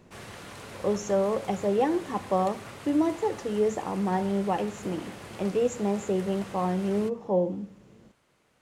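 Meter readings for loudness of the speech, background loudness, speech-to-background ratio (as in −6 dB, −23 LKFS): −28.5 LKFS, −43.0 LKFS, 14.5 dB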